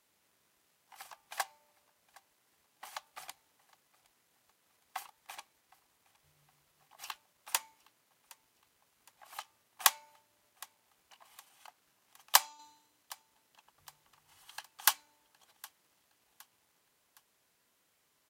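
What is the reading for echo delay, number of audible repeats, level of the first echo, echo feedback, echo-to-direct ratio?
0.764 s, 2, -23.5 dB, 45%, -22.5 dB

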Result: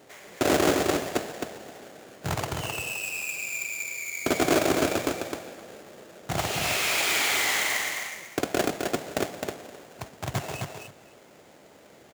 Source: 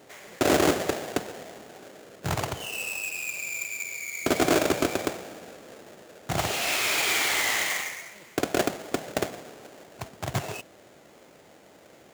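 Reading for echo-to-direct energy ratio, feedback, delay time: -4.5 dB, 15%, 0.261 s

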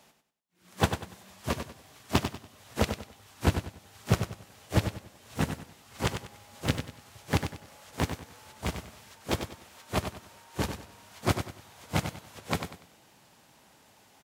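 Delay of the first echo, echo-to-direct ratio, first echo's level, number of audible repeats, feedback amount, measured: 96 ms, -7.5 dB, -8.0 dB, 3, 31%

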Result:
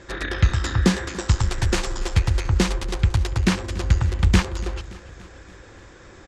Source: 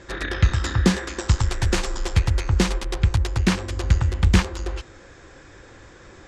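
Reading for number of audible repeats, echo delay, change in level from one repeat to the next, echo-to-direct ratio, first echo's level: 4, 0.287 s, -4.5 dB, -17.0 dB, -19.0 dB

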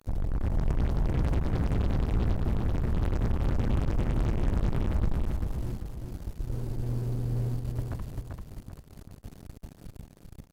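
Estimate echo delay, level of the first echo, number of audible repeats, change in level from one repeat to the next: 0.391 s, -4.0 dB, 3, -8.5 dB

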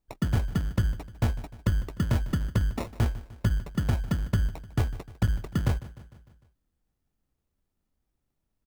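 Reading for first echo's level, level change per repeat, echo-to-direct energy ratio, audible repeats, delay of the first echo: -17.5 dB, -5.0 dB, -16.0 dB, 4, 0.151 s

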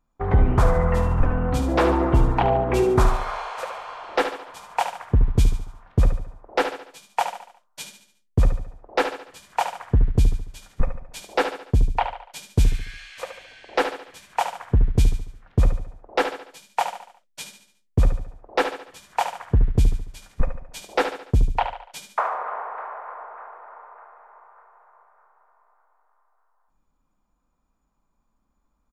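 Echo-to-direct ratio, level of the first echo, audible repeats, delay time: -7.5 dB, -8.5 dB, 4, 72 ms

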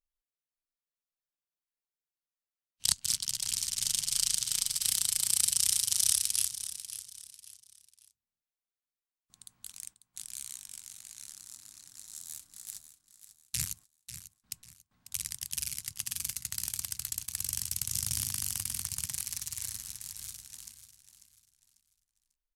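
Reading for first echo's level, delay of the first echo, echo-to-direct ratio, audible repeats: -12.0 dB, 0.544 s, -11.5 dB, 3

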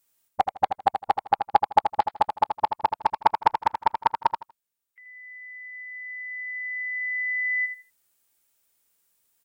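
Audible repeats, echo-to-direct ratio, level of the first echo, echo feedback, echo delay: 3, -7.5 dB, -7.5 dB, 21%, 80 ms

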